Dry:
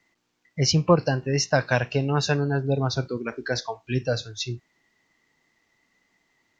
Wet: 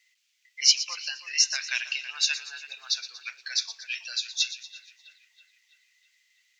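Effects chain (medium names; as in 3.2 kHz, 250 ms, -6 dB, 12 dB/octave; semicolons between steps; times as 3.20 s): Chebyshev high-pass 2.4 kHz, order 3; on a send: two-band feedback delay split 3 kHz, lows 326 ms, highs 118 ms, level -13 dB; on the sum: trim +6.5 dB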